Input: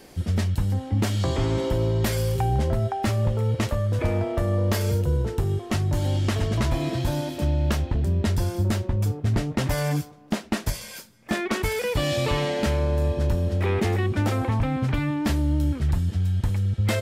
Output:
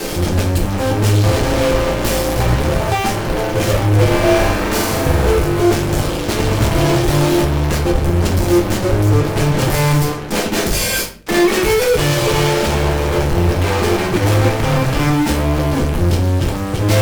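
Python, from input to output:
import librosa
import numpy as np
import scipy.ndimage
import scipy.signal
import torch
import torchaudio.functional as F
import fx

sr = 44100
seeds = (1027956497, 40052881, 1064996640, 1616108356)

y = fx.peak_eq(x, sr, hz=430.0, db=3.5, octaves=0.58)
y = fx.fuzz(y, sr, gain_db=52.0, gate_db=-47.0)
y = fx.room_flutter(y, sr, wall_m=7.5, rt60_s=0.76, at=(4.07, 5.27))
y = fx.room_shoebox(y, sr, seeds[0], volume_m3=37.0, walls='mixed', distance_m=0.63)
y = F.gain(torch.from_numpy(y), -5.0).numpy()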